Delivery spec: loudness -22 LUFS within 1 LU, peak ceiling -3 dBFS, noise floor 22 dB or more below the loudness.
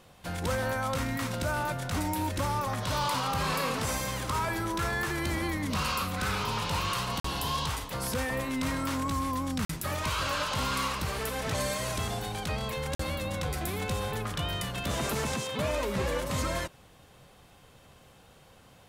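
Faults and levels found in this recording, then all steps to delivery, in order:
dropouts 3; longest dropout 44 ms; loudness -31.0 LUFS; peak level -20.5 dBFS; loudness target -22.0 LUFS
-> interpolate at 7.20/9.65/12.95 s, 44 ms; trim +9 dB

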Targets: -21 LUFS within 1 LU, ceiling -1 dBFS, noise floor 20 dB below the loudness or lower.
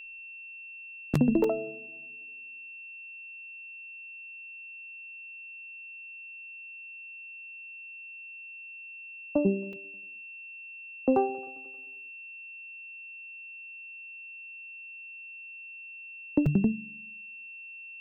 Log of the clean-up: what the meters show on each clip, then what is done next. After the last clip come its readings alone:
dropouts 3; longest dropout 3.3 ms; steady tone 2.7 kHz; tone level -42 dBFS; loudness -35.5 LUFS; peak level -11.0 dBFS; loudness target -21.0 LUFS
-> interpolate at 1.44/9.73/16.46 s, 3.3 ms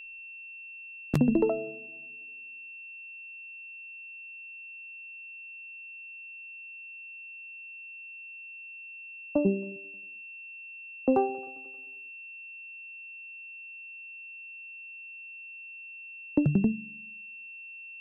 dropouts 0; steady tone 2.7 kHz; tone level -42 dBFS
-> band-stop 2.7 kHz, Q 30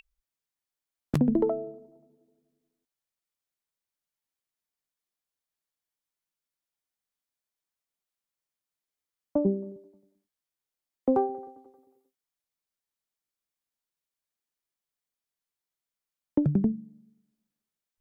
steady tone not found; loudness -28.5 LUFS; peak level -11.0 dBFS; loudness target -21.0 LUFS
-> trim +7.5 dB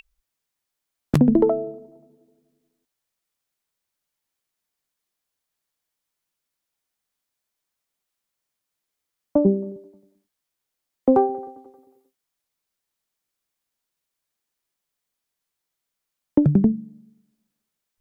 loudness -21.0 LUFS; peak level -3.5 dBFS; noise floor -83 dBFS

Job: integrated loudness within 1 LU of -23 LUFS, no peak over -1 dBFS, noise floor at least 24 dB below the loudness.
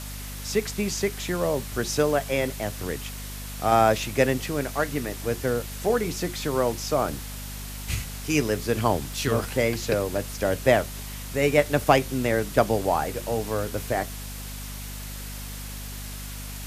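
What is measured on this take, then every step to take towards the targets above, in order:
hum 50 Hz; highest harmonic 250 Hz; hum level -35 dBFS; noise floor -36 dBFS; noise floor target -51 dBFS; loudness -26.5 LUFS; peak level -2.0 dBFS; loudness target -23.0 LUFS
-> hum notches 50/100/150/200/250 Hz; noise print and reduce 15 dB; trim +3.5 dB; peak limiter -1 dBFS

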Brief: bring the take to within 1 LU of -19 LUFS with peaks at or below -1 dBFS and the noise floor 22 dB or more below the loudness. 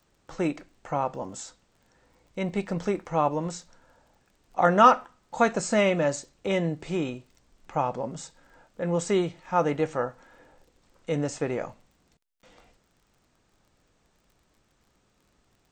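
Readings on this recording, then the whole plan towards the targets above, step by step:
tick rate 31 per s; loudness -27.0 LUFS; peak level -4.5 dBFS; loudness target -19.0 LUFS
-> de-click; trim +8 dB; peak limiter -1 dBFS

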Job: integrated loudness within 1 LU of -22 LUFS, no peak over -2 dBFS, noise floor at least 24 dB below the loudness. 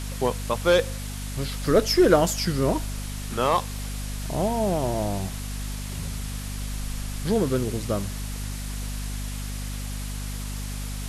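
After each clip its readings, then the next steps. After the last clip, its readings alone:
hum 50 Hz; highest harmonic 250 Hz; hum level -30 dBFS; noise floor -33 dBFS; noise floor target -51 dBFS; loudness -26.5 LUFS; peak level -5.0 dBFS; loudness target -22.0 LUFS
-> hum notches 50/100/150/200/250 Hz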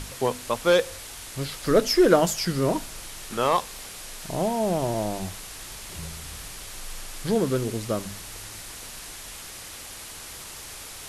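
hum not found; noise floor -41 dBFS; noise floor target -50 dBFS
-> noise reduction 9 dB, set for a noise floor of -41 dBFS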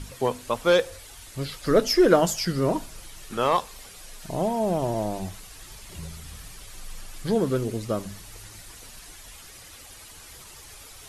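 noise floor -46 dBFS; noise floor target -49 dBFS
-> noise reduction 6 dB, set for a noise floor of -46 dBFS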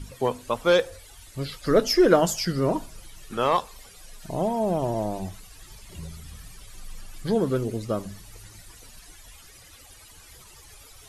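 noise floor -49 dBFS; loudness -24.5 LUFS; peak level -5.0 dBFS; loudness target -22.0 LUFS
-> trim +2.5 dB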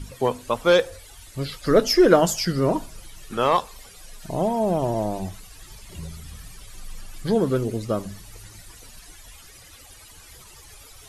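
loudness -22.0 LUFS; peak level -2.5 dBFS; noise floor -47 dBFS

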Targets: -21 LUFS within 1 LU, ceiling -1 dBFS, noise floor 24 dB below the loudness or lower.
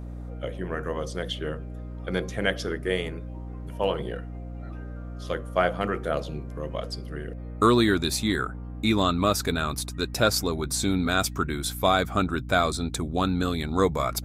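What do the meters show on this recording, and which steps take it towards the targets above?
hum 60 Hz; highest harmonic 300 Hz; hum level -34 dBFS; loudness -26.5 LUFS; peak level -7.0 dBFS; loudness target -21.0 LUFS
-> de-hum 60 Hz, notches 5; trim +5.5 dB

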